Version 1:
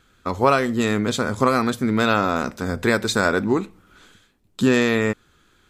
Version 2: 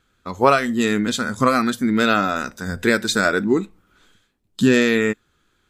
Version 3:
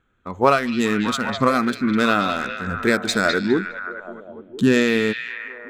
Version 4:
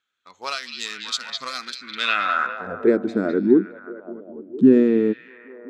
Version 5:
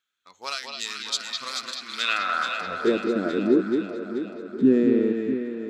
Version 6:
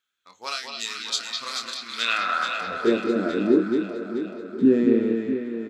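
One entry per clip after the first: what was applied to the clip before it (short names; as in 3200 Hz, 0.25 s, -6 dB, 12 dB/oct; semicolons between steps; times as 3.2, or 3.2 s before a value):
spectral noise reduction 9 dB; gain +2.5 dB
Wiener smoothing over 9 samples; on a send: delay with a stepping band-pass 0.205 s, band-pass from 3500 Hz, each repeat -0.7 oct, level -3 dB; on the sum: gain -1 dB
band-pass sweep 4800 Hz -> 310 Hz, 1.86–3; gain +7 dB
high shelf 4000 Hz +7.5 dB; echo with dull and thin repeats by turns 0.216 s, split 1100 Hz, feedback 74%, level -4.5 dB; gain -5 dB
doubler 26 ms -7 dB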